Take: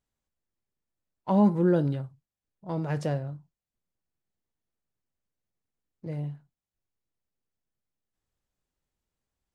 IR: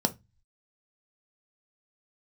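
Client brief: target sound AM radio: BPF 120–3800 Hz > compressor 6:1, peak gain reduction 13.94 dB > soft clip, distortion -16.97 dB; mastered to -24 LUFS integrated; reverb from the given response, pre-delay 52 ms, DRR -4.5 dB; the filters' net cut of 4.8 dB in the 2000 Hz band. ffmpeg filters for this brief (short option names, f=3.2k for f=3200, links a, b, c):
-filter_complex "[0:a]equalizer=f=2k:t=o:g=-6.5,asplit=2[a][b];[1:a]atrim=start_sample=2205,adelay=52[c];[b][c]afir=irnorm=-1:irlink=0,volume=-4dB[d];[a][d]amix=inputs=2:normalize=0,highpass=120,lowpass=3.8k,acompressor=threshold=-18dB:ratio=6,asoftclip=threshold=-16.5dB,volume=2dB"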